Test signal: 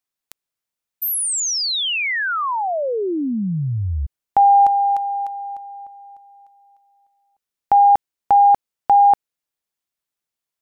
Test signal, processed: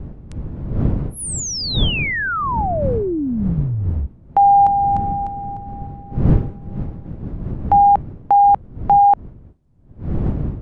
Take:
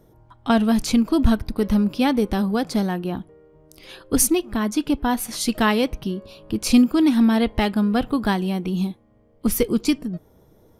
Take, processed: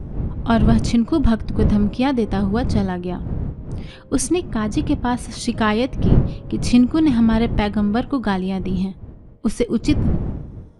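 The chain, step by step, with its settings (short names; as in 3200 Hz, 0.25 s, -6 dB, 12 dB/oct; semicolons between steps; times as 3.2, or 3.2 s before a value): wind noise 140 Hz -25 dBFS; high shelf 4200 Hz -6.5 dB; downsampling 22050 Hz; gain +1 dB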